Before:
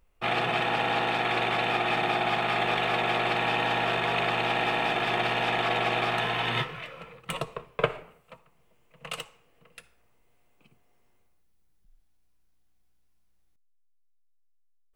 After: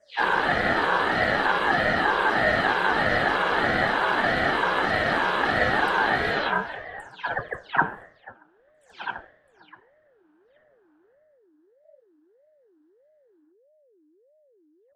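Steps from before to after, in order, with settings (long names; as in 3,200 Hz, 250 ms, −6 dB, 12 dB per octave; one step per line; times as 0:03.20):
every frequency bin delayed by itself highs early, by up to 299 ms
drawn EQ curve 120 Hz 0 dB, 180 Hz −19 dB, 810 Hz +1 dB, 1,300 Hz +14 dB, 1,900 Hz −11 dB, 3,500 Hz −1 dB
low-pass that shuts in the quiet parts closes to 2,400 Hz, open at −23.5 dBFS
ring modulator whose carrier an LFO sweeps 460 Hz, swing 35%, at 1.6 Hz
level +4.5 dB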